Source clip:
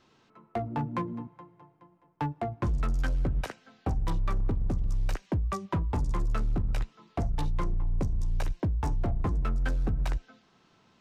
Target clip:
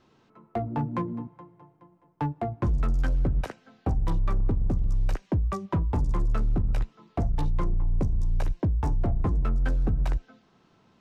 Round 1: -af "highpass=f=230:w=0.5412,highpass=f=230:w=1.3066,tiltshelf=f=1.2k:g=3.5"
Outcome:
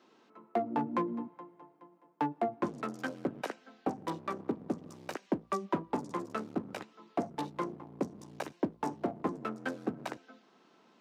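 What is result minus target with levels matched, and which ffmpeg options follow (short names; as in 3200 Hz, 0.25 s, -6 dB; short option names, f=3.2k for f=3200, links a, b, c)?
250 Hz band +5.5 dB
-af "tiltshelf=f=1.2k:g=3.5"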